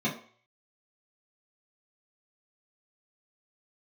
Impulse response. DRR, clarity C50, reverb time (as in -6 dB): -8.0 dB, 9.5 dB, 0.50 s